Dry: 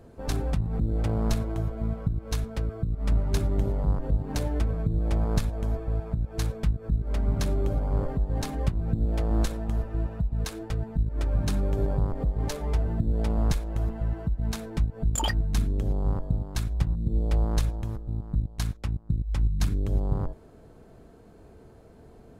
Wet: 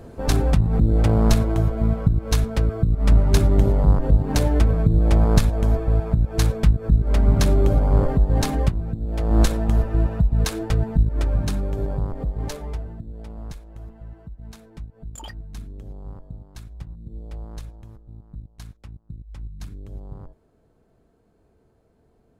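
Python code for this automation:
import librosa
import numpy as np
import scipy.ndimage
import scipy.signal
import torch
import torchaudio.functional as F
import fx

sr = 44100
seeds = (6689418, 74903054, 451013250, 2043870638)

y = fx.gain(x, sr, db=fx.line((8.56, 9.0), (9.0, -3.0), (9.42, 9.0), (10.93, 9.0), (11.66, 0.5), (12.54, 0.5), (13.07, -11.0)))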